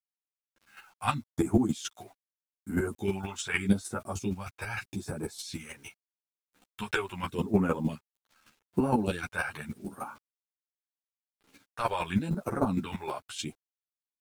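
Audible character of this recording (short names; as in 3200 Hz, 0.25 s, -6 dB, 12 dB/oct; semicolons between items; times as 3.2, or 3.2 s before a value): phasing stages 2, 0.82 Hz, lowest notch 210–3500 Hz; a quantiser's noise floor 10-bit, dither none; chopped level 6.5 Hz, depth 65%, duty 15%; a shimmering, thickened sound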